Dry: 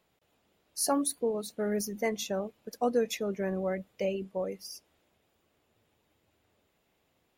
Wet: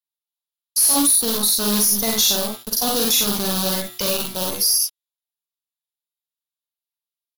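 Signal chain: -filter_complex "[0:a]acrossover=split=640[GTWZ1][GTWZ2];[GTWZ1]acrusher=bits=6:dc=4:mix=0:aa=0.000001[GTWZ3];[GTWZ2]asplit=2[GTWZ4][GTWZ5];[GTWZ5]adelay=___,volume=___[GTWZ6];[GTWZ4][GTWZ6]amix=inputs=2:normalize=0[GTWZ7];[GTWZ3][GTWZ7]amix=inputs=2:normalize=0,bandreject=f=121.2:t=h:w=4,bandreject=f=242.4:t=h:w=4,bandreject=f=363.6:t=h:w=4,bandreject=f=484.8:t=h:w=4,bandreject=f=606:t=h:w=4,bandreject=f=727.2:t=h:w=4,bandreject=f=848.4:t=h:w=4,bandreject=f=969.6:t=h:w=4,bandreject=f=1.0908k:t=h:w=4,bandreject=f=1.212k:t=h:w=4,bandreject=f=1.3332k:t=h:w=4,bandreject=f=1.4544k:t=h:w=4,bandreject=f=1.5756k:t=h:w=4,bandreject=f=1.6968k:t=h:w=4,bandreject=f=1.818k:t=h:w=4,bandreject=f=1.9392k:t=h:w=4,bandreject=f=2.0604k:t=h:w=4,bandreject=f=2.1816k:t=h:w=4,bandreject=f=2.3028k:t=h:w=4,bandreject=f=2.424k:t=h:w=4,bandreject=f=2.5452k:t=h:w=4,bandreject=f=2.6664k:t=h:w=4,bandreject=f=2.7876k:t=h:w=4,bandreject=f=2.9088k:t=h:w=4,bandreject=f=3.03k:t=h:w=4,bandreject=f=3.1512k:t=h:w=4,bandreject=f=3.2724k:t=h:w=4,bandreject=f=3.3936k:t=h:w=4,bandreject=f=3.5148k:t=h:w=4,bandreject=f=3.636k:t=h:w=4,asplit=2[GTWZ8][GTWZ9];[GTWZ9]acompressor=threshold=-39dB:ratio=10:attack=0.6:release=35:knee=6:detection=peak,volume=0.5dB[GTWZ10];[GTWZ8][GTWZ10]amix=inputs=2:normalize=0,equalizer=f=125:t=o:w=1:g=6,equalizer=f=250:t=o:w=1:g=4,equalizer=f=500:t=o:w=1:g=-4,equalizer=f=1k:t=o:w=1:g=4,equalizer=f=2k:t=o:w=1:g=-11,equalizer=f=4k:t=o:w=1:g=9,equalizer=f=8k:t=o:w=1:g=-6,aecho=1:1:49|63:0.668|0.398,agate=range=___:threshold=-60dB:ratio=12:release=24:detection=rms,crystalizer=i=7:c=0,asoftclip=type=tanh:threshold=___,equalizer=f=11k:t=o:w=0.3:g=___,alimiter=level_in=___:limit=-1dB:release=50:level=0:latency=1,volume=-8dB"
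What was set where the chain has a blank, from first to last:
37, -4.5dB, -47dB, -12dB, 10, 13.5dB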